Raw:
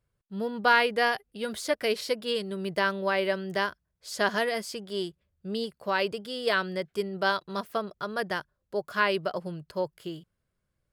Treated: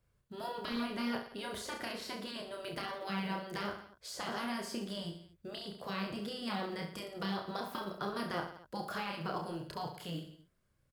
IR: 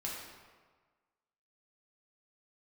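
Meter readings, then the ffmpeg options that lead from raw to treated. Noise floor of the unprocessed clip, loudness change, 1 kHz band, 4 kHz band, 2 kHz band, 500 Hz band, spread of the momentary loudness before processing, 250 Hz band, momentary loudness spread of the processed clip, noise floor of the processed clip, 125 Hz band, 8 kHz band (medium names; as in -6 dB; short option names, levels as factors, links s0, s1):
-80 dBFS, -11.0 dB, -10.5 dB, -8.5 dB, -14.5 dB, -13.5 dB, 10 LU, -4.0 dB, 7 LU, -75 dBFS, -3.5 dB, -7.0 dB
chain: -filter_complex "[0:a]afftfilt=real='re*lt(hypot(re,im),0.112)':imag='im*lt(hypot(re,im),0.112)':win_size=1024:overlap=0.75,acrossover=split=520|1300[s0][s1][s2];[s2]acompressor=threshold=0.00447:ratio=6[s3];[s0][s1][s3]amix=inputs=3:normalize=0,aecho=1:1:30|67.5|114.4|173|246.2:0.631|0.398|0.251|0.158|0.1,acrusher=bits=9:mode=log:mix=0:aa=0.000001,volume=1.12"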